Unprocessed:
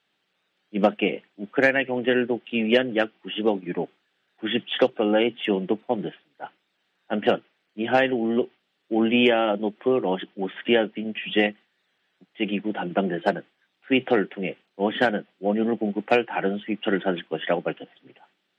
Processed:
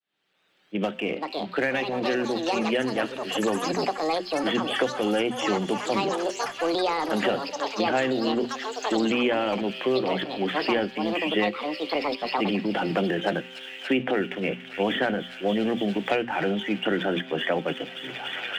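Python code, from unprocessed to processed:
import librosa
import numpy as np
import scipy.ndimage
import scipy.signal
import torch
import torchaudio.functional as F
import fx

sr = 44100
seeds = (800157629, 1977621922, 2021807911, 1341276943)

p1 = fx.fade_in_head(x, sr, length_s=4.69)
p2 = fx.hum_notches(p1, sr, base_hz=60, count=4)
p3 = fx.transient(p2, sr, attack_db=-4, sustain_db=7)
p4 = np.sign(p3) * np.maximum(np.abs(p3) - 10.0 ** (-37.5 / 20.0), 0.0)
p5 = p3 + F.gain(torch.from_numpy(p4), -9.0).numpy()
p6 = fx.comb_fb(p5, sr, f0_hz=130.0, decay_s=1.3, harmonics='all', damping=0.0, mix_pct=50)
p7 = fx.echo_wet_highpass(p6, sr, ms=287, feedback_pct=83, hz=3400.0, wet_db=-10.5)
p8 = fx.echo_pitch(p7, sr, ms=665, semitones=7, count=3, db_per_echo=-6.0)
p9 = fx.band_squash(p8, sr, depth_pct=100)
y = F.gain(torch.from_numpy(p9), 1.5).numpy()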